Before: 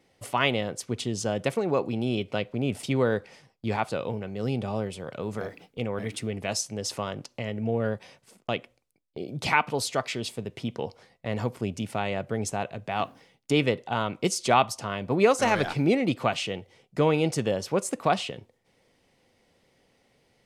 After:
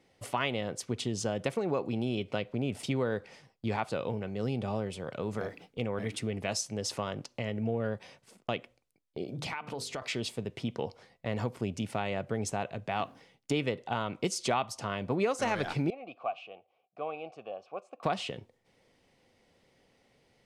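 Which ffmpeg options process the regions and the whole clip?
-filter_complex "[0:a]asettb=1/sr,asplit=3[s0][s1][s2];[s0]atrim=end=9.244[s3];[s1]atrim=start=9.24:end=10.02,asetpts=PTS-STARTPTS,afade=t=in:d=0.004:c=qsin,afade=t=out:st=0.776:d=0.004:c=qsin,bandreject=f=50:t=h:w=6,bandreject=f=100:t=h:w=6,bandreject=f=150:t=h:w=6,bandreject=f=200:t=h:w=6,bandreject=f=250:t=h:w=6,bandreject=f=300:t=h:w=6,bandreject=f=350:t=h:w=6,bandreject=f=400:t=h:w=6,bandreject=f=450:t=h:w=6,bandreject=f=500:t=h:w=6,acompressor=threshold=0.0251:ratio=6:attack=3.2:release=140:knee=1:detection=peak[s4];[s2]atrim=start=10.016[s5];[s3][s4]acrossfade=d=0.004:c1=hsin:c2=qsin[s6];[s6][s5]acrossfade=d=0.004:c1=qsin:c2=hsin,asettb=1/sr,asplit=3[s7][s8][s9];[s7]atrim=end=15.904[s10];[s8]atrim=start=15.9:end=18.03,asetpts=PTS-STARTPTS,afade=t=in:d=0.004:c=qsin,afade=t=out:st=2.126:d=0.004:c=qsin,asplit=3[s11][s12][s13];[s11]bandpass=f=730:t=q:w=8,volume=1[s14];[s12]bandpass=f=1090:t=q:w=8,volume=0.501[s15];[s13]bandpass=f=2440:t=q:w=8,volume=0.355[s16];[s14][s15][s16]amix=inputs=3:normalize=0,highshelf=f=7900:g=-10.5[s17];[s9]atrim=start=18.026[s18];[s10][s17]acrossfade=d=0.004:c1=hsin:c2=qsin[s19];[s19][s18]acrossfade=d=0.004:c1=qsin:c2=hsin,highshelf=f=12000:g=-8.5,acompressor=threshold=0.0501:ratio=3,volume=0.841"

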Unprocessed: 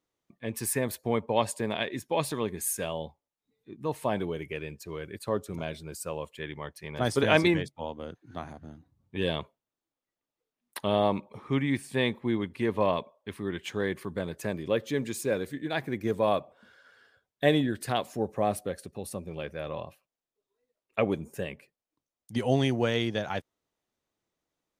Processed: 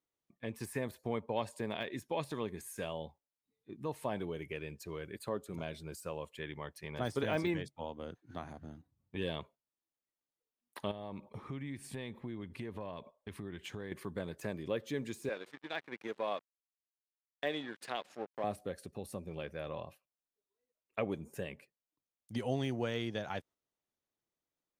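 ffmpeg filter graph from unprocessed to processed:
-filter_complex "[0:a]asettb=1/sr,asplit=3[s0][s1][s2];[s0]atrim=end=5.124[s3];[s1]atrim=start=5.12:end=5.57,asetpts=PTS-STARTPTS,afade=t=in:d=0.004:c=qsin,afade=t=out:st=0.446:d=0.004:c=qsin,equalizer=f=94:t=o:w=0.5:g=-6,bandreject=f=5600:w=7.7[s4];[s2]atrim=start=5.566[s5];[s3][s4]acrossfade=d=0.004:c1=hsin:c2=qsin[s6];[s6][s5]acrossfade=d=0.004:c1=qsin:c2=hsin,asettb=1/sr,asplit=3[s7][s8][s9];[s7]atrim=end=10.914[s10];[s8]atrim=start=10.91:end=13.92,asetpts=PTS-STARTPTS,afade=t=in:d=0.004:c=qsin,afade=t=out:st=3.006:d=0.004:c=qsin,acompressor=threshold=0.0112:ratio=3:attack=3.2:release=140:knee=1:detection=peak,lowshelf=f=140:g=8[s11];[s9]atrim=start=13.916[s12];[s10][s11]acrossfade=d=0.004:c1=hsin:c2=qsin[s13];[s13][s12]acrossfade=d=0.004:c1=qsin:c2=hsin,asettb=1/sr,asplit=3[s14][s15][s16];[s14]atrim=end=15.294[s17];[s15]atrim=start=15.29:end=18.44,asetpts=PTS-STARTPTS,afade=t=in:d=0.004:c=qsin,afade=t=out:st=3.146:d=0.004:c=qsin,aemphasis=mode=production:type=riaa,aeval=exprs='sgn(val(0))*max(abs(val(0))-0.00944,0)':c=same,highpass=170,lowpass=3100[s18];[s16]atrim=start=18.436[s19];[s17][s18]acrossfade=d=0.004:c1=hsin:c2=qsin[s20];[s20][s19]acrossfade=d=0.004:c1=qsin:c2=hsin,deesser=0.9,agate=range=0.447:threshold=0.00316:ratio=16:detection=peak,acompressor=threshold=0.01:ratio=1.5,volume=0.75"

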